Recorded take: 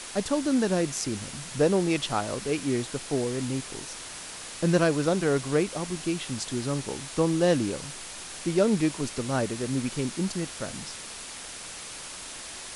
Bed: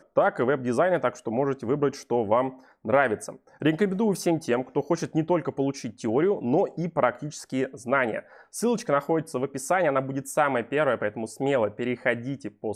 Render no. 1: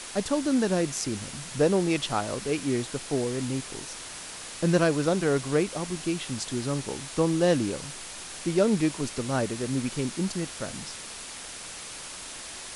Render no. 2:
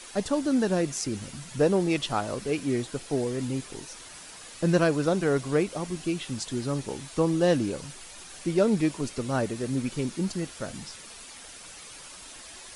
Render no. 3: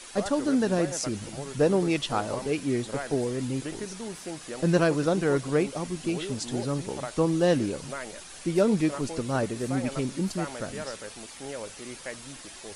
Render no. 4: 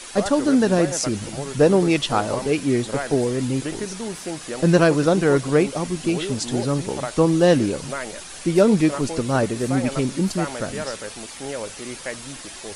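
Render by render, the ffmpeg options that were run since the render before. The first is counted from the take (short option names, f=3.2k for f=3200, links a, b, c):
-af anull
-af "afftdn=nr=8:nf=-41"
-filter_complex "[1:a]volume=-14dB[a];[0:a][a]amix=inputs=2:normalize=0"
-af "volume=7dB,alimiter=limit=-3dB:level=0:latency=1"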